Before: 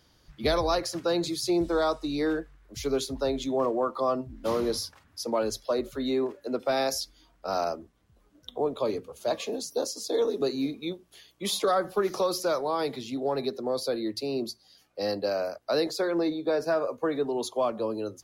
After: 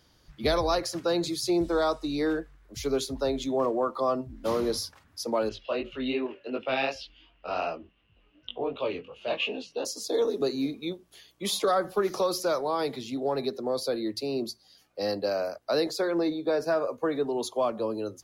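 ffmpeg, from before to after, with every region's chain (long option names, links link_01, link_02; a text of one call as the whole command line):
ffmpeg -i in.wav -filter_complex "[0:a]asettb=1/sr,asplit=3[link_01][link_02][link_03];[link_01]atrim=end=5.494[link_04];[link_02]atrim=start=5.49:end=9.85,asetpts=PTS-STARTPTS,afade=type=in:duration=0.004:curve=qsin,afade=type=out:start_time=4.356:duration=0.004:curve=qsin,flanger=delay=18.5:depth=5.2:speed=2.7,lowpass=frequency=2800:width_type=q:width=12[link_05];[link_03]atrim=start=9.846[link_06];[link_04][link_05]acrossfade=duration=0.004:curve1=hsin:curve2=qsin[link_07];[link_07][link_06]acrossfade=duration=0.004:curve1=qsin:curve2=hsin" out.wav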